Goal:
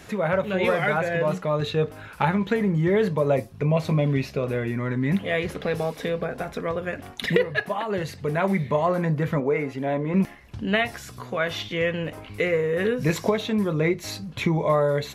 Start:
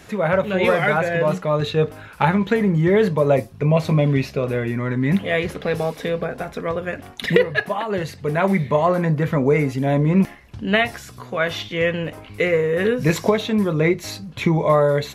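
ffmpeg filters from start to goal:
ffmpeg -i in.wav -filter_complex "[0:a]asettb=1/sr,asplit=3[link_01][link_02][link_03];[link_01]atrim=end=9.404[link_04];[link_02]atrim=start=9.4:end=10.14,asetpts=PTS-STARTPTS,afade=type=in:duration=0.004:curve=qsin,afade=type=out:start_time=0.736:duration=0.004:curve=qsin,bass=frequency=250:gain=-10,treble=frequency=4000:gain=-11[link_05];[link_03]atrim=start=10.136[link_06];[link_04][link_05]acrossfade=duration=0.004:curve1=hsin:curve2=qsin[link_07];[link_07][link_06]acrossfade=duration=0.004:curve1=qsin:curve2=hsin,asplit=2[link_08][link_09];[link_09]acompressor=threshold=-27dB:ratio=6,volume=-0.5dB[link_10];[link_08][link_10]amix=inputs=2:normalize=0,volume=-6.5dB" out.wav

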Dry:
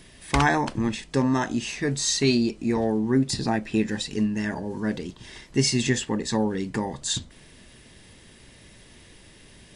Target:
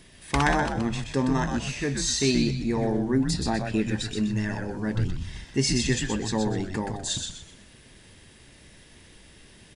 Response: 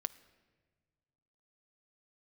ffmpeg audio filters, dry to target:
-filter_complex "[0:a]asplit=5[link_01][link_02][link_03][link_04][link_05];[link_02]adelay=125,afreqshift=-100,volume=-5dB[link_06];[link_03]adelay=250,afreqshift=-200,volume=-14.9dB[link_07];[link_04]adelay=375,afreqshift=-300,volume=-24.8dB[link_08];[link_05]adelay=500,afreqshift=-400,volume=-34.7dB[link_09];[link_01][link_06][link_07][link_08][link_09]amix=inputs=5:normalize=0,asplit=3[link_10][link_11][link_12];[link_10]afade=type=out:start_time=4.95:duration=0.02[link_13];[link_11]asubboost=boost=4.5:cutoff=160,afade=type=in:start_time=4.95:duration=0.02,afade=type=out:start_time=5.44:duration=0.02[link_14];[link_12]afade=type=in:start_time=5.44:duration=0.02[link_15];[link_13][link_14][link_15]amix=inputs=3:normalize=0,volume=-2.5dB"

